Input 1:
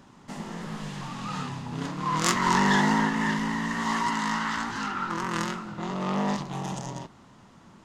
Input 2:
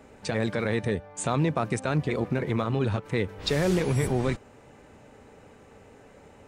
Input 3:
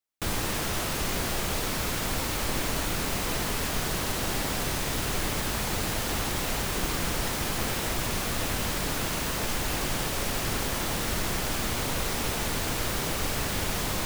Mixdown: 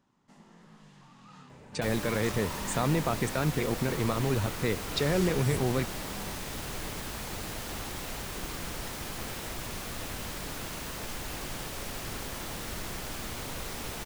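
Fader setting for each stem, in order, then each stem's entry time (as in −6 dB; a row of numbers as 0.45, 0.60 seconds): −19.0, −2.5, −8.5 decibels; 0.00, 1.50, 1.60 seconds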